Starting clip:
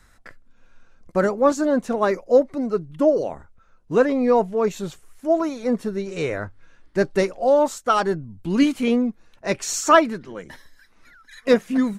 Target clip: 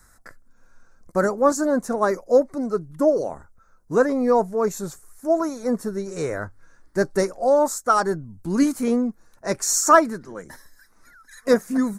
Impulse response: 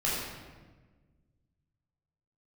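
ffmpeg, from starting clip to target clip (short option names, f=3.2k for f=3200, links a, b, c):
-af "highshelf=f=2.2k:t=q:w=1.5:g=-11.5,aexciter=amount=8.9:drive=4.9:freq=4.3k,volume=-1.5dB"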